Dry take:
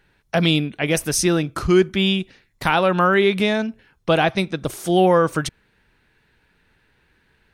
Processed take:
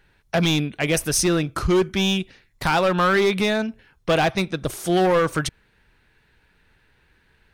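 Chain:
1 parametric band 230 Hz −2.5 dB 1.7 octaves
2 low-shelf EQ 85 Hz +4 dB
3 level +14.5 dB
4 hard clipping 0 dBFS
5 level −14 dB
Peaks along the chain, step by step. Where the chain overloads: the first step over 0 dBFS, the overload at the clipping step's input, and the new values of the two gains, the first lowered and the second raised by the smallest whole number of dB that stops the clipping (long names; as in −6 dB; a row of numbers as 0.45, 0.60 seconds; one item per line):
−4.5, −4.5, +10.0, 0.0, −14.0 dBFS
step 3, 10.0 dB
step 3 +4.5 dB, step 5 −4 dB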